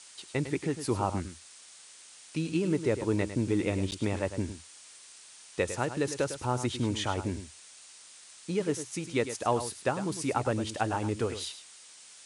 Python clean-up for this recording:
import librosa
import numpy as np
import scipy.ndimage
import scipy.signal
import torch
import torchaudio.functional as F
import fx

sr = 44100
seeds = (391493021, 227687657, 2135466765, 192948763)

y = fx.fix_interpolate(x, sr, at_s=(3.91,), length_ms=9.8)
y = fx.noise_reduce(y, sr, print_start_s=1.58, print_end_s=2.08, reduce_db=24.0)
y = fx.fix_echo_inverse(y, sr, delay_ms=104, level_db=-11.0)